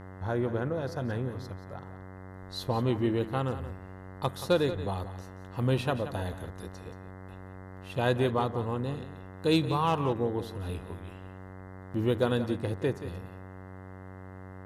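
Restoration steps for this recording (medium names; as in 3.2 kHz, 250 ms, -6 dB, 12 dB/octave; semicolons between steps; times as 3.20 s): de-hum 94 Hz, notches 22; inverse comb 178 ms -12.5 dB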